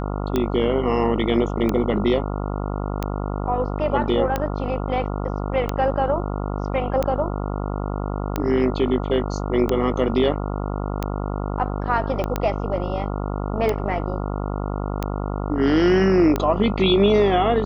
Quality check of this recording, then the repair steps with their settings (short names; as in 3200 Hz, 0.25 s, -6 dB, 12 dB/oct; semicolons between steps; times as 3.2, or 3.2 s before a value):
buzz 50 Hz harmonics 28 -26 dBFS
tick 45 rpm -9 dBFS
12.24 pop -13 dBFS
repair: de-click; de-hum 50 Hz, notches 28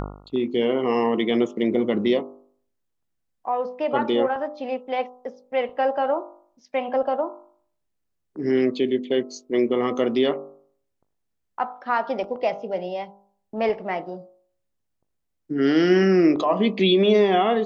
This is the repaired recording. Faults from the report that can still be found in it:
12.24 pop